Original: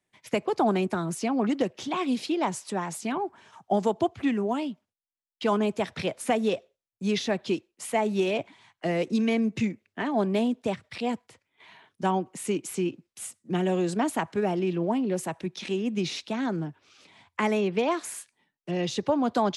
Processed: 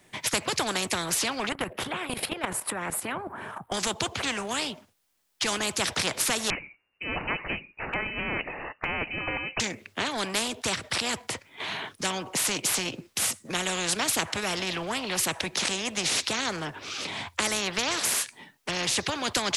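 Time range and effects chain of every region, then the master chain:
1.49–3.72 EQ curve 1500 Hz 0 dB, 3000 Hz -12 dB, 6200 Hz -23 dB, 10000 Hz -1 dB + level quantiser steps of 12 dB
6.5–9.6 inverted band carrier 2800 Hz + dynamic EQ 240 Hz, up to +4 dB, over -49 dBFS, Q 1
whole clip: dynamic EQ 1200 Hz, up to -4 dB, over -41 dBFS, Q 0.78; spectral compressor 4:1; gain +5.5 dB

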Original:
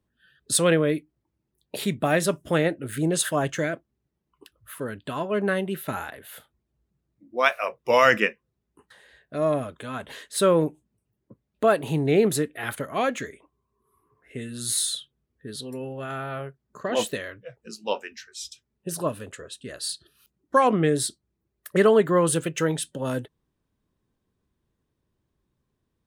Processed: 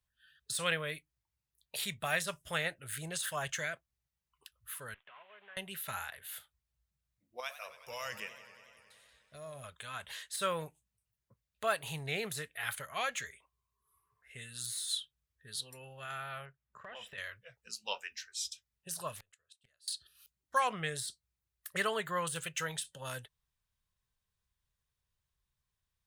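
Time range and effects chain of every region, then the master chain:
4.94–5.57 CVSD 16 kbps + HPF 430 Hz + compressor 2.5:1, threshold -49 dBFS
7.4–9.64 bell 1700 Hz -11.5 dB 2.2 oct + compressor 2:1, threshold -31 dBFS + warbling echo 93 ms, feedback 79%, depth 133 cents, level -14 dB
16.45–17.18 polynomial smoothing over 25 samples + compressor 8:1, threshold -31 dBFS
19.16–19.88 flipped gate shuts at -30 dBFS, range -29 dB + Doppler distortion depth 0.66 ms
whole clip: de-esser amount 60%; passive tone stack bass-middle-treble 10-0-10

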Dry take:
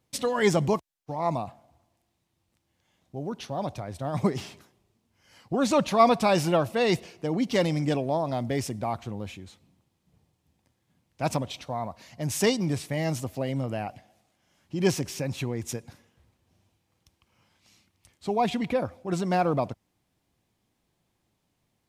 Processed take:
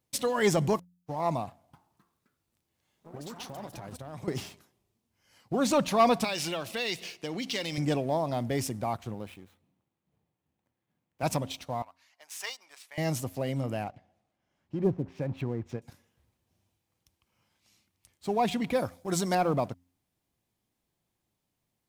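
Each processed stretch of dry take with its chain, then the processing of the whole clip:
1.47–4.28 compressor 10:1, threshold -35 dBFS + echoes that change speed 0.262 s, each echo +4 st, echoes 3, each echo -6 dB
6.24–7.78 weighting filter D + compressor 3:1, threshold -30 dBFS
9.14–11.23 median filter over 9 samples + HPF 170 Hz 6 dB/oct
11.82–12.98 Bessel high-pass 1500 Hz, order 4 + tilt -3.5 dB/oct
13.84–15.82 LPF 1600 Hz 6 dB/oct + treble ducked by the level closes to 630 Hz, closed at -23 dBFS
18.73–19.35 high shelf 3100 Hz +10.5 dB + notch 2700 Hz, Q 6.4
whole clip: de-hum 88.63 Hz, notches 3; sample leveller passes 1; high shelf 10000 Hz +9 dB; gain -5.5 dB

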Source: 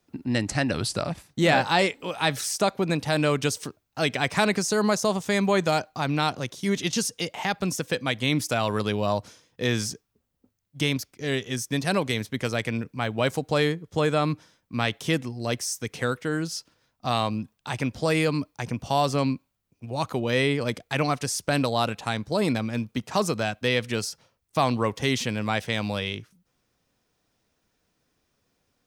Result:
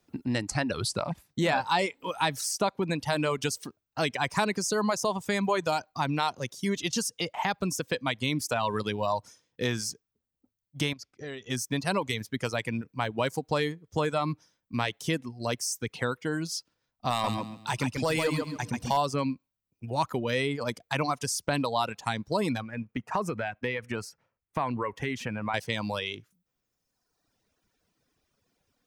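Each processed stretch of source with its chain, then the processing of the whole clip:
10.93–11.5 Bessel low-pass 5600 Hz + compressor 4:1, threshold -33 dBFS
17.1–18.97 high shelf 3600 Hz +5 dB + overloaded stage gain 16 dB + feedback echo 0.137 s, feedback 36%, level -3 dB
22.62–25.54 resonant high shelf 2900 Hz -10 dB, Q 1.5 + compressor 3:1, threshold -25 dBFS
whole clip: reverb removal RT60 1.3 s; compressor 2:1, threshold -27 dBFS; dynamic EQ 960 Hz, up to +7 dB, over -49 dBFS, Q 4.6

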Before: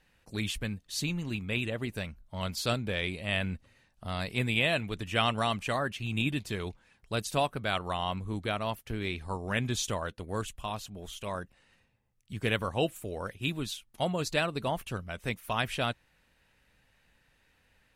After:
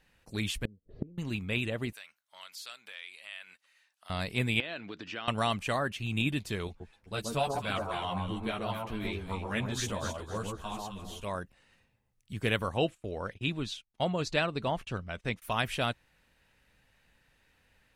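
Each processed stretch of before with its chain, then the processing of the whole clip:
0.65–1.18 LPF 1300 Hz 24 dB/oct + resonant low shelf 700 Hz +14 dB, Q 3 + flipped gate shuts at -20 dBFS, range -34 dB
1.93–4.1 HPF 1400 Hz + compressor 2:1, threshold -48 dBFS
4.6–5.28 compressor 10:1, threshold -35 dBFS + speaker cabinet 220–5500 Hz, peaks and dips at 310 Hz +5 dB, 1500 Hz +6 dB, 4700 Hz +7 dB
6.67–11.24 echo with dull and thin repeats by turns 0.129 s, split 1100 Hz, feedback 53%, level -2 dB + ensemble effect
12.77–15.42 LPF 5800 Hz + gate -51 dBFS, range -18 dB
whole clip: dry

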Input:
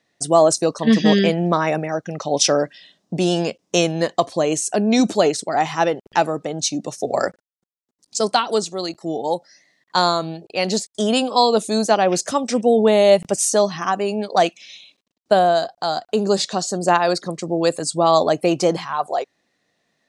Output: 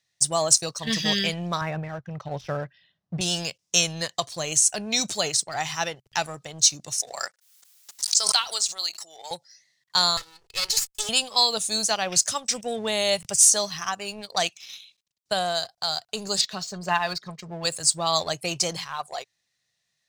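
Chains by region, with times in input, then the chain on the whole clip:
1.61–3.21 de-esser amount 50% + LPF 1700 Hz + low shelf 150 Hz +9 dB
6.92–9.31 HPF 800 Hz + backwards sustainer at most 54 dB/s
10.17–11.09 minimum comb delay 2.3 ms + low shelf 190 Hz -7 dB
16.41–17.65 LPF 3000 Hz + comb 4.7 ms, depth 51%
whole clip: EQ curve 130 Hz 0 dB, 260 Hz -19 dB, 5500 Hz +6 dB; sample leveller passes 1; gain -4.5 dB

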